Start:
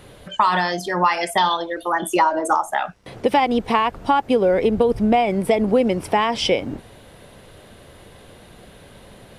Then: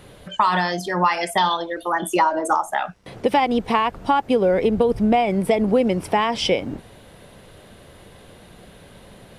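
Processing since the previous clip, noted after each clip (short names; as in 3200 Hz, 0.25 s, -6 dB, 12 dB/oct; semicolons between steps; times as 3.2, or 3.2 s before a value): bell 180 Hz +3 dB 0.33 oct; gain -1 dB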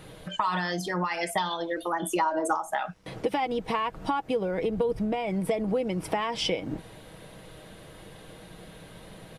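compressor 3:1, threshold -25 dBFS, peak gain reduction 9.5 dB; comb 6.3 ms, depth 42%; gain -2 dB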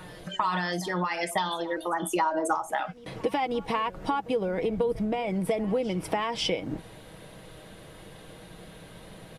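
reverse echo 0.541 s -20 dB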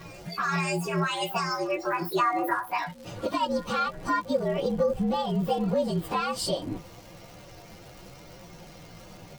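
inharmonic rescaling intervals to 116%; crackle 220/s -44 dBFS; gain +3.5 dB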